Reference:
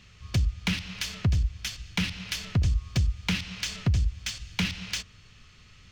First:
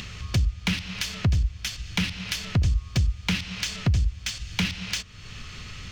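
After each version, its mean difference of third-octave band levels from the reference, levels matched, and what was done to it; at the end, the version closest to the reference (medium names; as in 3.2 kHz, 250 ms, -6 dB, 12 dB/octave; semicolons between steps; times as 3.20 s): 3.0 dB: upward compressor, threshold -28 dBFS; trim +2 dB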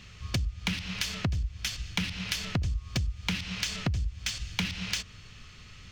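4.0 dB: compression 5:1, threshold -32 dBFS, peak gain reduction 11.5 dB; trim +4.5 dB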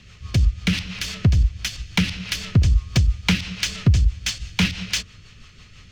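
1.5 dB: rotary cabinet horn 6 Hz; trim +9 dB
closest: third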